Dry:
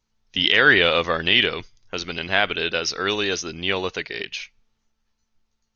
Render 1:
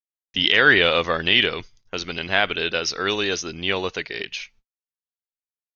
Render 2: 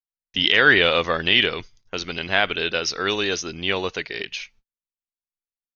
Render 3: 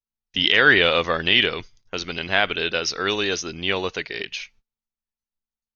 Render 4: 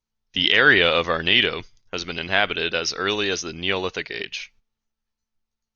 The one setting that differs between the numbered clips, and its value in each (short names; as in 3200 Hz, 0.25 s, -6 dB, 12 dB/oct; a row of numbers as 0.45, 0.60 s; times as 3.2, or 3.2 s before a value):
gate, range: -55, -37, -23, -10 dB